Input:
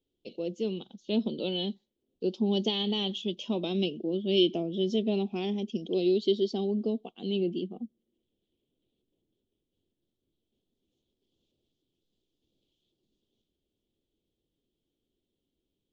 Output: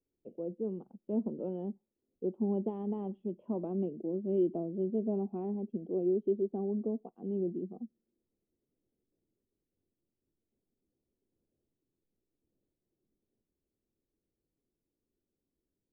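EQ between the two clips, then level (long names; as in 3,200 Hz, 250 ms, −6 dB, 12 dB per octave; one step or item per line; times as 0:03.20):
inverse Chebyshev low-pass filter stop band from 5,000 Hz, stop band 70 dB
high-frequency loss of the air 200 metres
−4.0 dB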